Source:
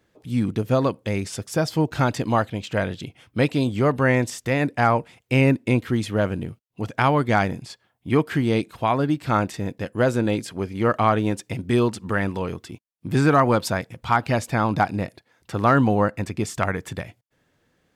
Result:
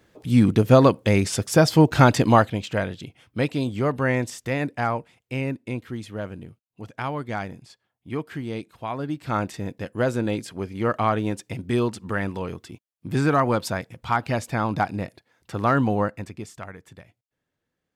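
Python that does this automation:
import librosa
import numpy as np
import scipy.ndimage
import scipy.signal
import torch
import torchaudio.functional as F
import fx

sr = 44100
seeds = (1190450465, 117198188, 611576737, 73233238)

y = fx.gain(x, sr, db=fx.line((2.27, 6.0), (2.94, -3.5), (4.55, -3.5), (5.44, -10.0), (8.83, -10.0), (9.46, -3.0), (16.01, -3.0), (16.67, -15.0)))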